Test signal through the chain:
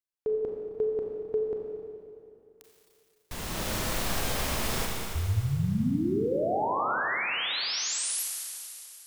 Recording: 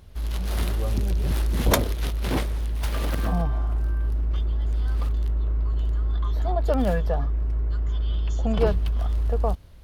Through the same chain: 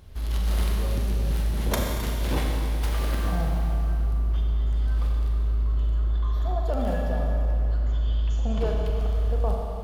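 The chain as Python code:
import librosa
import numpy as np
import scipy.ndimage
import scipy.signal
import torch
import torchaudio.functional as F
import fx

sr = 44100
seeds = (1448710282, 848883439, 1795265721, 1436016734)

y = fx.rider(x, sr, range_db=5, speed_s=0.5)
y = fx.rev_schroeder(y, sr, rt60_s=2.8, comb_ms=29, drr_db=-1.0)
y = y * librosa.db_to_amplitude(-5.0)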